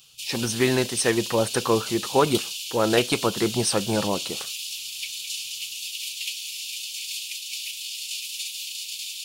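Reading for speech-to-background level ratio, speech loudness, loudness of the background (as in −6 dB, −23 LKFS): 6.5 dB, −24.0 LKFS, −30.5 LKFS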